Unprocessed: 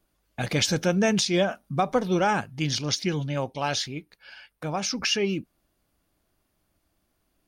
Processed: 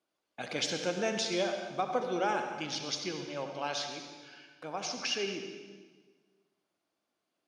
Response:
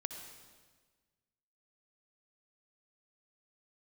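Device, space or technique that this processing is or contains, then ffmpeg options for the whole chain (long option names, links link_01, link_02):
supermarket ceiling speaker: -filter_complex "[0:a]highpass=310,lowpass=6900[link_01];[1:a]atrim=start_sample=2205[link_02];[link_01][link_02]afir=irnorm=-1:irlink=0,equalizer=frequency=1800:width_type=o:width=0.24:gain=-3.5,volume=-5.5dB"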